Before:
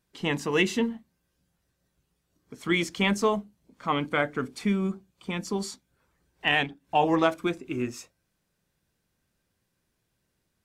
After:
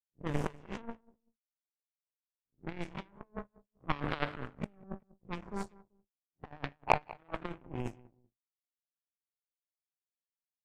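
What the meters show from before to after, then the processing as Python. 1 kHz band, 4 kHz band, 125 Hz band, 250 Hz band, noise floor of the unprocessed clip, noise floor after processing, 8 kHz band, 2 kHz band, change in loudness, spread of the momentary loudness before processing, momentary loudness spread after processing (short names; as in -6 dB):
-8.5 dB, -18.0 dB, -7.5 dB, -14.5 dB, -77 dBFS, under -85 dBFS, -19.5 dB, -14.0 dB, -12.5 dB, 12 LU, 17 LU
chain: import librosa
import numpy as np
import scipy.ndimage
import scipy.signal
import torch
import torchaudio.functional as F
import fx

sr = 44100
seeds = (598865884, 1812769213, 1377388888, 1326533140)

y = fx.spec_blur(x, sr, span_ms=150.0)
y = fx.rotary_switch(y, sr, hz=1.2, then_hz=7.0, switch_at_s=3.38)
y = fx.over_compress(y, sr, threshold_db=-33.0, ratio=-0.5)
y = fx.graphic_eq(y, sr, hz=(125, 1000, 4000), db=(9, 11, -10))
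y = fx.power_curve(y, sr, exponent=3.0)
y = fx.echo_feedback(y, sr, ms=193, feedback_pct=26, wet_db=-21)
y = fx.env_lowpass(y, sr, base_hz=320.0, full_db=-44.0)
y = fx.low_shelf(y, sr, hz=66.0, db=11.0)
y = np.clip(y, -10.0 ** (-15.5 / 20.0), 10.0 ** (-15.5 / 20.0))
y = y * 10.0 ** (10.0 / 20.0)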